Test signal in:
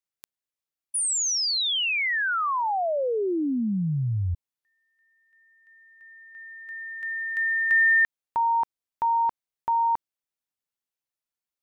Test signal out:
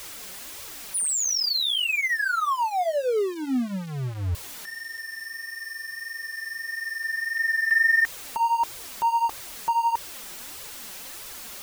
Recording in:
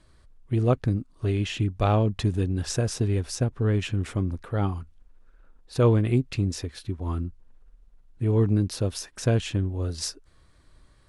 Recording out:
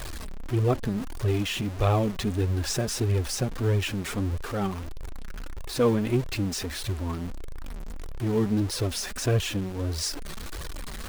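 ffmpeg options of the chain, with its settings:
ffmpeg -i in.wav -af "aeval=exprs='val(0)+0.5*0.0376*sgn(val(0))':channel_layout=same,flanger=delay=1.6:depth=3.9:regen=3:speed=1.6:shape=triangular,volume=1dB" out.wav

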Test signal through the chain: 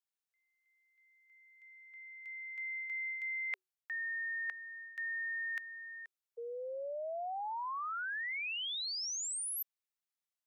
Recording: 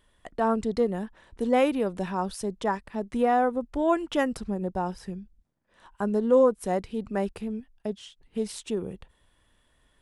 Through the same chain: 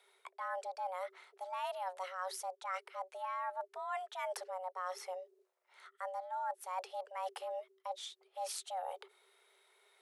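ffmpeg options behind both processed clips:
ffmpeg -i in.wav -af "lowshelf=frequency=210:gain=-12,areverse,acompressor=threshold=-37dB:ratio=12,areverse,afreqshift=370" out.wav

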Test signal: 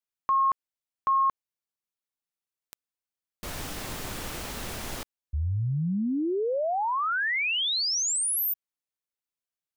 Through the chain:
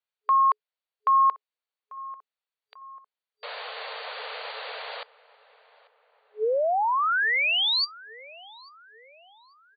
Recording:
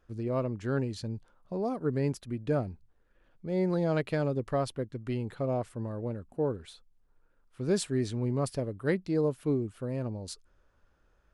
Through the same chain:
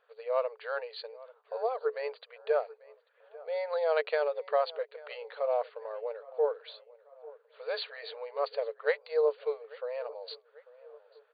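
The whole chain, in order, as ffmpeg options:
ffmpeg -i in.wav -filter_complex "[0:a]afftfilt=real='re*between(b*sr/4096,430,4700)':imag='im*between(b*sr/4096,430,4700)':win_size=4096:overlap=0.75,asplit=2[link_01][link_02];[link_02]adelay=842,lowpass=frequency=2200:poles=1,volume=-20dB,asplit=2[link_03][link_04];[link_04]adelay=842,lowpass=frequency=2200:poles=1,volume=0.51,asplit=2[link_05][link_06];[link_06]adelay=842,lowpass=frequency=2200:poles=1,volume=0.51,asplit=2[link_07][link_08];[link_08]adelay=842,lowpass=frequency=2200:poles=1,volume=0.51[link_09];[link_01][link_03][link_05][link_07][link_09]amix=inputs=5:normalize=0,volume=3.5dB" out.wav

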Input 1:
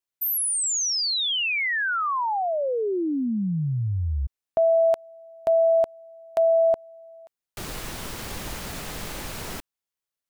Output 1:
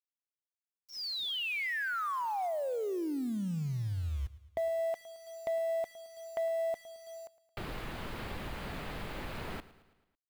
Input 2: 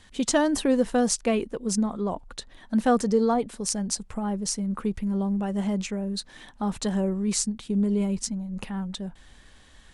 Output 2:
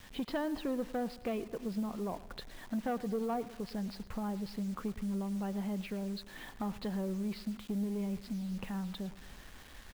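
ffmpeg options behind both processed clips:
ffmpeg -i in.wav -af "lowpass=3000,adynamicequalizer=threshold=0.0251:dfrequency=720:dqfactor=5.9:tfrequency=720:tqfactor=5.9:attack=5:release=100:ratio=0.4:range=1.5:mode=boostabove:tftype=bell,acompressor=threshold=-39dB:ratio=2:attack=16:release=516:knee=1:detection=peak,aresample=11025,asoftclip=type=tanh:threshold=-27.5dB,aresample=44100,acrusher=bits=8:mix=0:aa=0.000001,aecho=1:1:110|220|330|440|550:0.126|0.068|0.0367|0.0198|0.0107" out.wav

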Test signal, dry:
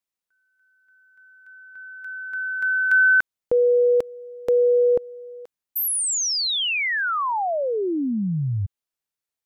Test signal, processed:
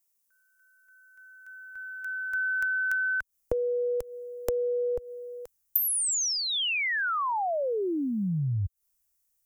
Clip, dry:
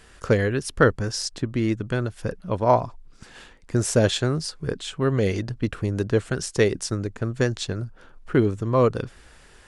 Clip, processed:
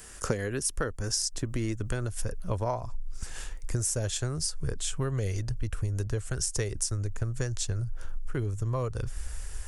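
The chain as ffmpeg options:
ffmpeg -i in.wav -filter_complex "[0:a]asubboost=boost=12:cutoff=65,acrossover=split=230|3400[link_01][link_02][link_03];[link_03]aexciter=amount=5.3:drive=2.9:freq=5400[link_04];[link_01][link_02][link_04]amix=inputs=3:normalize=0,acompressor=threshold=-26dB:ratio=16:attack=17:release=417:knee=1:detection=peak" out.wav

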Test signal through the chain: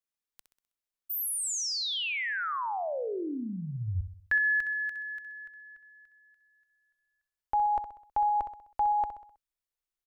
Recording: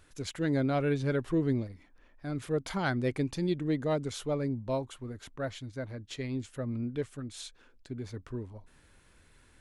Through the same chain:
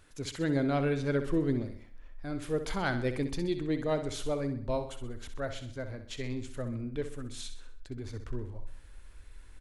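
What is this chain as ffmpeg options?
ffmpeg -i in.wav -filter_complex "[0:a]asubboost=boost=8.5:cutoff=53,asplit=2[link_01][link_02];[link_02]aecho=0:1:64|128|192|256|320:0.316|0.149|0.0699|0.0328|0.0154[link_03];[link_01][link_03]amix=inputs=2:normalize=0" out.wav

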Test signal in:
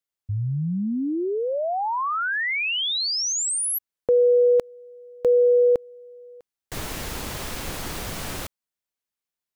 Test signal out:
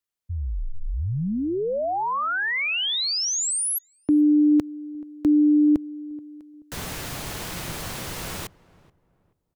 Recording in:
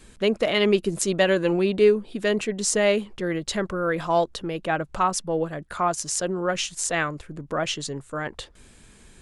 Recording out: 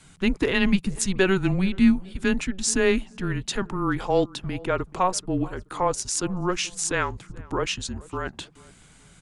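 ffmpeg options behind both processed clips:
ffmpeg -i in.wav -filter_complex "[0:a]lowshelf=frequency=76:gain=-7.5,asplit=2[link_01][link_02];[link_02]adelay=430,lowpass=frequency=1200:poles=1,volume=-20.5dB,asplit=2[link_03][link_04];[link_04]adelay=430,lowpass=frequency=1200:poles=1,volume=0.34,asplit=2[link_05][link_06];[link_06]adelay=430,lowpass=frequency=1200:poles=1,volume=0.34[link_07];[link_01][link_03][link_05][link_07]amix=inputs=4:normalize=0,afreqshift=-190" out.wav

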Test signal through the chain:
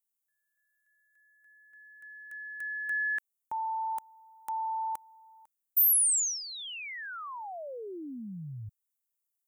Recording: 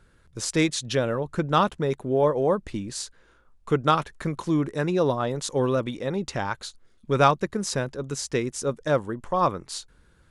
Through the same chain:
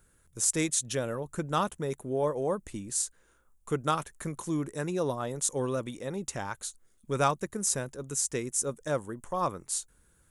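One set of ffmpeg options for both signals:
ffmpeg -i in.wav -af "aexciter=amount=6.5:drive=4.5:freq=6500,volume=-7.5dB" out.wav

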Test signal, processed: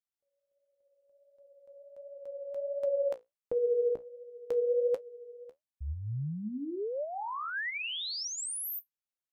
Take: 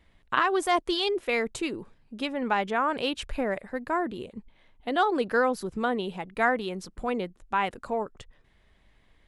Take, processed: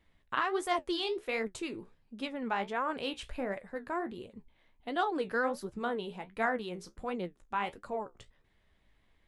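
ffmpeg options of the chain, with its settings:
ffmpeg -i in.wav -af "flanger=delay=8.4:depth=9.9:regen=52:speed=1.4:shape=triangular,volume=-3dB" out.wav

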